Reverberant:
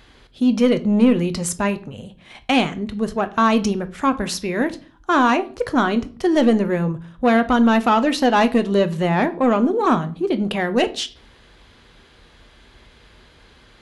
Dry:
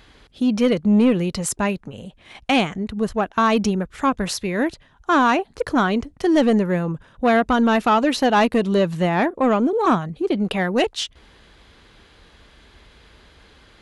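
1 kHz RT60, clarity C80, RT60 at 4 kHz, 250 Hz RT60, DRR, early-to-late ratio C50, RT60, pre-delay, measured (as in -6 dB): 0.40 s, 22.5 dB, 0.35 s, 0.60 s, 10.0 dB, 18.0 dB, 0.40 s, 8 ms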